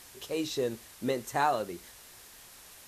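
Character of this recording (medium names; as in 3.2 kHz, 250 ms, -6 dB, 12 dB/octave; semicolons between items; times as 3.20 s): a quantiser's noise floor 8-bit, dither triangular; Vorbis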